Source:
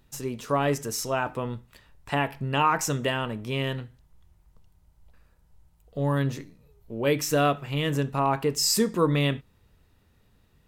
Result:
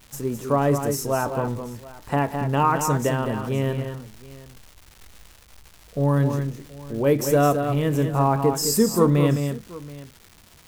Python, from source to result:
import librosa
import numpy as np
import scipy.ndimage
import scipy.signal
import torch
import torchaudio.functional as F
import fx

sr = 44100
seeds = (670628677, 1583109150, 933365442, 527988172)

y = fx.peak_eq(x, sr, hz=3200.0, db=-13.5, octaves=1.9)
y = fx.echo_multitap(y, sr, ms=(183, 211, 729), db=(-18.0, -7.5, -19.5))
y = fx.dmg_crackle(y, sr, seeds[0], per_s=520.0, level_db=-42.0)
y = y * librosa.db_to_amplitude(5.5)